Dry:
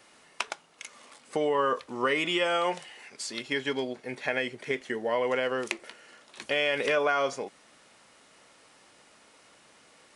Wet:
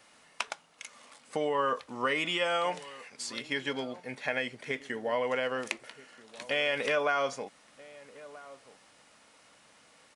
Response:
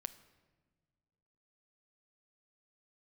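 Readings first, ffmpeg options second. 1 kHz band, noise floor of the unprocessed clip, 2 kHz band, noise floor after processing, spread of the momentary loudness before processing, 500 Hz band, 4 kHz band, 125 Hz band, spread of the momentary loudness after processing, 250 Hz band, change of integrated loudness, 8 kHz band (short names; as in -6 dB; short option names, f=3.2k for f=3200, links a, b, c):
-2.0 dB, -59 dBFS, -2.0 dB, -61 dBFS, 16 LU, -3.5 dB, -2.0 dB, -2.0 dB, 20 LU, -4.0 dB, -2.5 dB, -2.0 dB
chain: -filter_complex "[0:a]equalizer=f=370:w=4.5:g=-8,asplit=2[a][b];[b]adelay=1283,volume=-18dB,highshelf=f=4k:g=-28.9[c];[a][c]amix=inputs=2:normalize=0,volume=-2dB"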